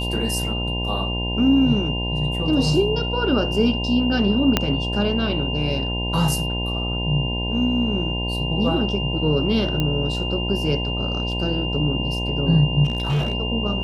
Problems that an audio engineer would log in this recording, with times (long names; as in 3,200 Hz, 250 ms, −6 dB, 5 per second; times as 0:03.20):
mains buzz 60 Hz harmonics 17 −26 dBFS
whistle 2,800 Hz −27 dBFS
0:04.57: click −2 dBFS
0:09.80: click −10 dBFS
0:12.84–0:13.35: clipping −17.5 dBFS